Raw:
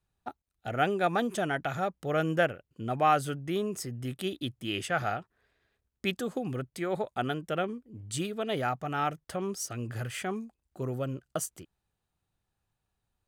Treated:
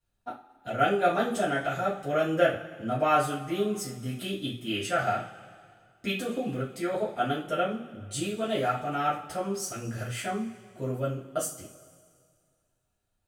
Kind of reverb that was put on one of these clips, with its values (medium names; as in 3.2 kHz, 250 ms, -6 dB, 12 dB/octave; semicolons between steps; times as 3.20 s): two-slope reverb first 0.31 s, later 2.1 s, from -20 dB, DRR -9.5 dB; trim -8 dB